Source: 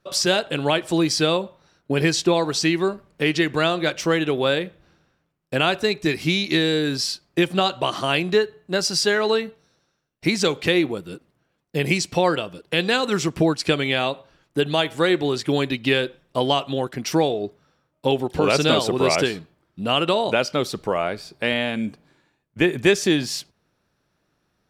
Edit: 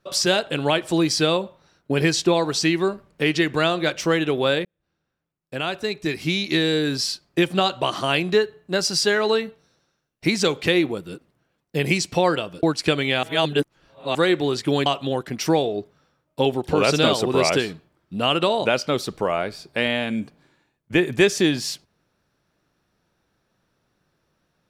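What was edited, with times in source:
4.65–6.76 fade in
12.63–13.44 cut
14.04–14.96 reverse
15.67–16.52 cut

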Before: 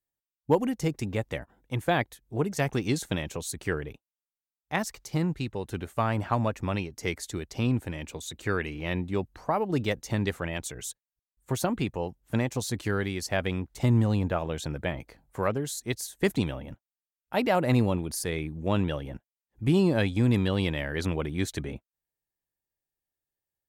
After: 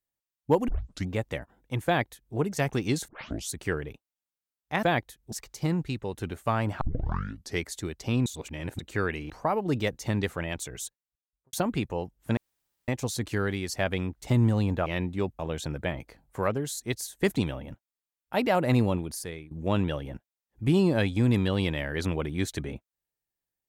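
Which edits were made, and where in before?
0.68 tape start 0.42 s
1.86–2.35 copy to 4.83
3.08 tape start 0.43 s
6.32 tape start 0.78 s
7.77–8.3 reverse
8.81–9.34 move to 14.39
10.87–11.57 studio fade out
12.41 insert room tone 0.51 s
17.95–18.51 fade out, to -18.5 dB

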